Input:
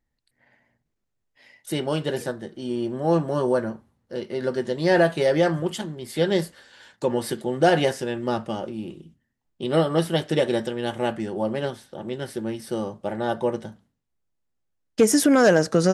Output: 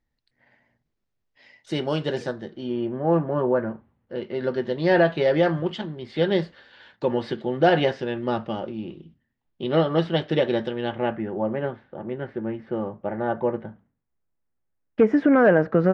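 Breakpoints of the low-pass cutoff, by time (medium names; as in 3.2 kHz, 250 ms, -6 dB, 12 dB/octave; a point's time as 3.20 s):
low-pass 24 dB/octave
2.33 s 5.8 kHz
3.04 s 2.3 kHz
3.55 s 2.3 kHz
4.49 s 4 kHz
10.74 s 4 kHz
11.24 s 2.2 kHz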